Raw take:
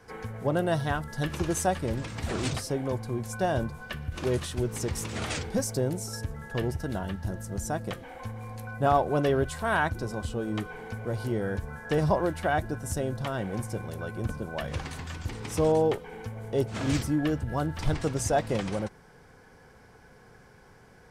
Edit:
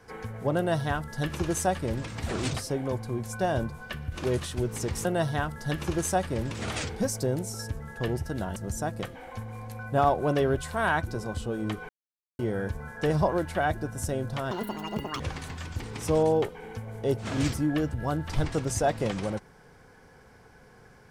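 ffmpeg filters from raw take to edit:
ffmpeg -i in.wav -filter_complex "[0:a]asplit=8[link_01][link_02][link_03][link_04][link_05][link_06][link_07][link_08];[link_01]atrim=end=5.052[link_09];[link_02]atrim=start=0.568:end=2.032[link_10];[link_03]atrim=start=5.048:end=7.102[link_11];[link_04]atrim=start=7.438:end=10.77,asetpts=PTS-STARTPTS,afade=type=out:start_time=3.328:duration=0.004:curve=hsin[link_12];[link_05]atrim=start=10.77:end=11.27,asetpts=PTS-STARTPTS,volume=0[link_13];[link_06]atrim=start=11.27:end=13.394,asetpts=PTS-STARTPTS,afade=type=in:duration=0.004:curve=hsin[link_14];[link_07]atrim=start=13.39:end=14.69,asetpts=PTS-STARTPTS,asetrate=83349,aresample=44100,atrim=end_sample=30333,asetpts=PTS-STARTPTS[link_15];[link_08]atrim=start=14.686[link_16];[link_09][link_10]acrossfade=duration=0.004:curve1=hsin:curve2=hsin[link_17];[link_17][link_11]acrossfade=duration=0.004:curve1=hsin:curve2=hsin[link_18];[link_12][link_13][link_14]concat=n=3:v=0:a=1[link_19];[link_18][link_19]acrossfade=duration=0.004:curve1=hsin:curve2=hsin[link_20];[link_20][link_15]acrossfade=duration=0.004:curve1=hsin:curve2=hsin[link_21];[link_21][link_16]acrossfade=duration=0.004:curve1=hsin:curve2=hsin" out.wav

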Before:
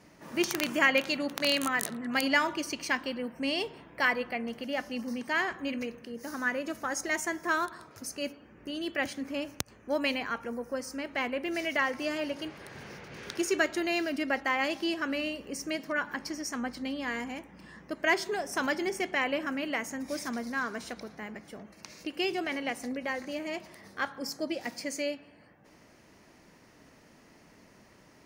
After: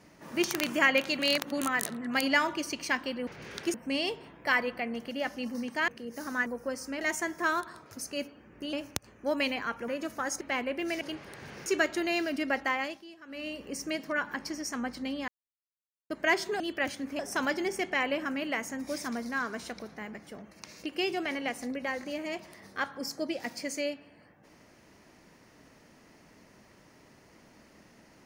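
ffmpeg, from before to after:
ffmpeg -i in.wav -filter_complex "[0:a]asplit=19[link_01][link_02][link_03][link_04][link_05][link_06][link_07][link_08][link_09][link_10][link_11][link_12][link_13][link_14][link_15][link_16][link_17][link_18][link_19];[link_01]atrim=end=1.192[link_20];[link_02]atrim=start=1.188:end=1.612,asetpts=PTS-STARTPTS,areverse[link_21];[link_03]atrim=start=1.608:end=3.272[link_22];[link_04]atrim=start=12.988:end=13.462[link_23];[link_05]atrim=start=3.268:end=5.412[link_24];[link_06]atrim=start=5.948:end=6.532[link_25];[link_07]atrim=start=10.518:end=11.072[link_26];[link_08]atrim=start=7.058:end=8.782[link_27];[link_09]atrim=start=9.368:end=10.522[link_28];[link_10]atrim=start=6.528:end=7.062[link_29];[link_11]atrim=start=11.068:end=11.672[link_30];[link_12]atrim=start=12.338:end=12.992[link_31];[link_13]atrim=start=13.458:end=14.84,asetpts=PTS-STARTPTS,afade=type=out:start_time=1.012:duration=0.37:silence=0.11885[link_32];[link_14]atrim=start=14.84:end=15.06,asetpts=PTS-STARTPTS,volume=-18.5dB[link_33];[link_15]atrim=start=15.06:end=17.08,asetpts=PTS-STARTPTS,afade=type=in:duration=0.37:silence=0.11885,afade=type=out:start_time=2.016:duration=0.004:curve=hsin[link_34];[link_16]atrim=start=17.08:end=17.9,asetpts=PTS-STARTPTS,volume=0[link_35];[link_17]atrim=start=17.9:end=18.402,asetpts=PTS-STARTPTS,afade=type=in:duration=0.004:curve=hsin[link_36];[link_18]atrim=start=8.778:end=9.372[link_37];[link_19]atrim=start=18.398[link_38];[link_20][link_21]acrossfade=duration=0.004:curve1=hsin:curve2=hsin[link_39];[link_39][link_22]acrossfade=duration=0.004:curve1=hsin:curve2=hsin[link_40];[link_40][link_23]acrossfade=duration=0.004:curve1=hsin:curve2=hsin[link_41];[link_41][link_24]acrossfade=duration=0.004:curve1=hsin:curve2=hsin[link_42];[link_42][link_25]acrossfade=duration=0.004:curve1=hsin:curve2=hsin[link_43];[link_43][link_26]acrossfade=duration=0.004:curve1=hsin:curve2=hsin[link_44];[link_44][link_27]acrossfade=duration=0.004:curve1=hsin:curve2=hsin[link_45];[link_45][link_28]acrossfade=duration=0.004:curve1=hsin:curve2=hsin[link_46];[link_46][link_29]acrossfade=duration=0.004:curve1=hsin:curve2=hsin[link_47];[link_47][link_30]acrossfade=duration=0.004:curve1=hsin:curve2=hsin[link_48];[link_48][link_31]acrossfade=duration=0.004:curve1=hsin:curve2=hsin[link_49];[link_32][link_33][link_34][link_35][link_36]concat=n=5:v=0:a=1[link_50];[link_49][link_50]acrossfade=duration=0.004:curve1=hsin:curve2=hsin[link_51];[link_51][link_37]acrossfade=duration=0.004:curve1=hsin:curve2=hsin[link_52];[link_52][link_38]acrossfade=duration=0.004:curve1=hsin:curve2=hsin" out.wav

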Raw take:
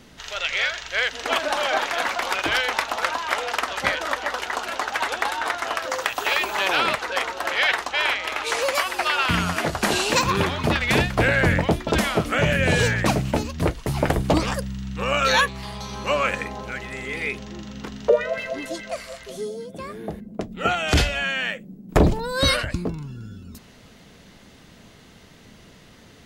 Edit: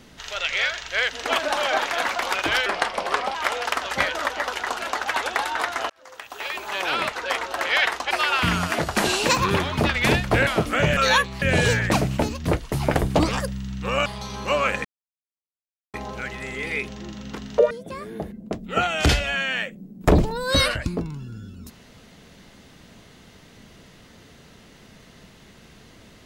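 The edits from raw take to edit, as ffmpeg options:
ffmpeg -i in.wav -filter_complex "[0:a]asplit=11[link_01][link_02][link_03][link_04][link_05][link_06][link_07][link_08][link_09][link_10][link_11];[link_01]atrim=end=2.664[link_12];[link_02]atrim=start=2.66:end=3.21,asetpts=PTS-STARTPTS,asetrate=35280,aresample=44100[link_13];[link_03]atrim=start=3.206:end=5.76,asetpts=PTS-STARTPTS,afade=type=out:start_time=2.55:duration=0.004:curve=hsin[link_14];[link_04]atrim=start=5.76:end=7.972,asetpts=PTS-STARTPTS,afade=type=in:duration=1.56[link_15];[link_05]atrim=start=8.968:end=11.332[link_16];[link_06]atrim=start=12.058:end=12.562[link_17];[link_07]atrim=start=15.198:end=15.652[link_18];[link_08]atrim=start=12.558:end=15.202[link_19];[link_09]atrim=start=15.648:end=16.44,asetpts=PTS-STARTPTS,afade=type=out:start_time=0.788:duration=0.004:curve=hsin,apad=pad_dur=1.09[link_20];[link_10]atrim=start=16.44:end=18.212,asetpts=PTS-STARTPTS,afade=type=in:duration=0.004:curve=hsin[link_21];[link_11]atrim=start=19.588[link_22];[link_12][link_13]acrossfade=duration=0.004:curve1=hsin:curve2=hsin[link_23];[link_14][link_15]concat=n=2:v=0:a=1[link_24];[link_23][link_24]acrossfade=duration=0.004:curve1=hsin:curve2=hsin[link_25];[link_25][link_16]acrossfade=duration=0.004:curve1=hsin:curve2=hsin[link_26];[link_26][link_17]acrossfade=duration=0.004:curve1=hsin:curve2=hsin[link_27];[link_27][link_18]acrossfade=duration=0.004:curve1=hsin:curve2=hsin[link_28];[link_28][link_19]acrossfade=duration=0.004:curve1=hsin:curve2=hsin[link_29];[link_20][link_21]concat=n=2:v=0:a=1[link_30];[link_29][link_30]acrossfade=duration=0.004:curve1=hsin:curve2=hsin[link_31];[link_31][link_22]acrossfade=duration=0.004:curve1=hsin:curve2=hsin" out.wav

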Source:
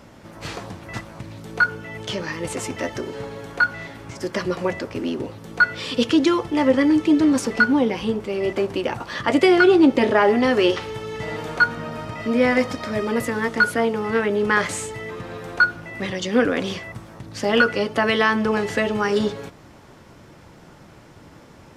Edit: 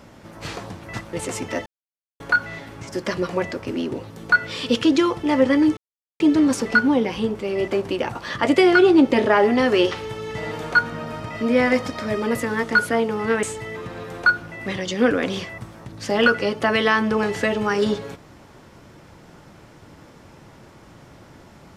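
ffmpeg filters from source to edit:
ffmpeg -i in.wav -filter_complex "[0:a]asplit=6[link_01][link_02][link_03][link_04][link_05][link_06];[link_01]atrim=end=1.132[link_07];[link_02]atrim=start=2.408:end=2.94,asetpts=PTS-STARTPTS,afade=type=out:start_time=0.528:duration=0.004:curve=hsin[link_08];[link_03]atrim=start=2.94:end=3.48,asetpts=PTS-STARTPTS,volume=0[link_09];[link_04]atrim=start=3.48:end=7.05,asetpts=PTS-STARTPTS,afade=type=in:duration=0.004:curve=hsin,afade=type=out:start_time=3.566:duration=0.004:curve=hsin,apad=pad_dur=0.43[link_10];[link_05]atrim=start=7.05:end=14.282,asetpts=PTS-STARTPTS,afade=type=in:duration=0.004:curve=hsin[link_11];[link_06]atrim=start=14.768[link_12];[link_08][link_09][link_10][link_11]concat=n=4:v=0:a=1[link_13];[link_07][link_13]acrossfade=duration=0.004:curve1=hsin:curve2=hsin[link_14];[link_14][link_12]acrossfade=duration=0.004:curve1=hsin:curve2=hsin" out.wav

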